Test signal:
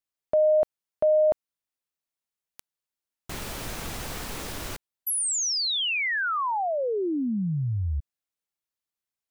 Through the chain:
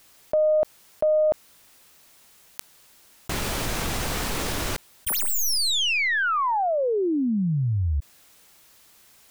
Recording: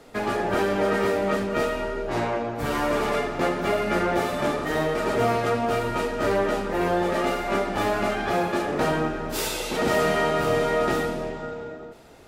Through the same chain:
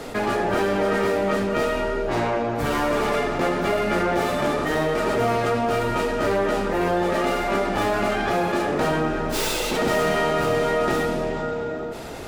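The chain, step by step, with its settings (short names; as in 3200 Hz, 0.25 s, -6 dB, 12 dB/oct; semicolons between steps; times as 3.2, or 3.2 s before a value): tracing distortion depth 0.066 ms; fast leveller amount 50%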